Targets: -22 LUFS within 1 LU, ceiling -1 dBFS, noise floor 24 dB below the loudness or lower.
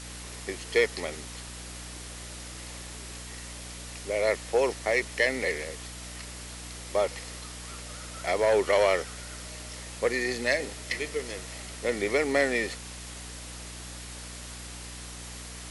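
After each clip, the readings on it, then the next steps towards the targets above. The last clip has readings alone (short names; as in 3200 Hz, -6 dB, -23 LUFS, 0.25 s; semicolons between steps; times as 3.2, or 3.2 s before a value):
hum 60 Hz; harmonics up to 300 Hz; hum level -42 dBFS; noise floor -42 dBFS; noise floor target -55 dBFS; loudness -30.5 LUFS; peak -11.5 dBFS; loudness target -22.0 LUFS
-> de-hum 60 Hz, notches 5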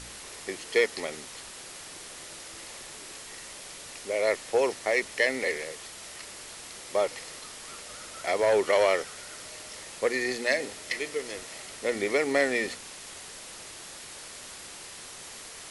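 hum none; noise floor -44 dBFS; noise floor target -54 dBFS
-> denoiser 10 dB, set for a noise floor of -44 dBFS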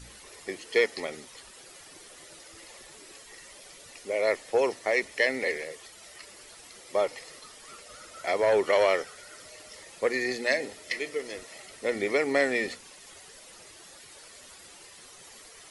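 noise floor -50 dBFS; noise floor target -52 dBFS
-> denoiser 6 dB, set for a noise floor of -50 dBFS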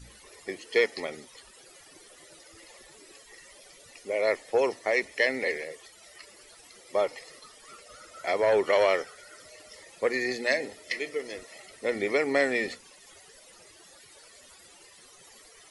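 noise floor -54 dBFS; loudness -28.0 LUFS; peak -11.5 dBFS; loudness target -22.0 LUFS
-> gain +6 dB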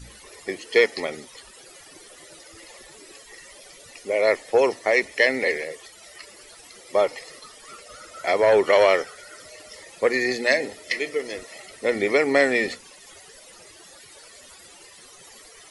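loudness -22.0 LUFS; peak -5.5 dBFS; noise floor -48 dBFS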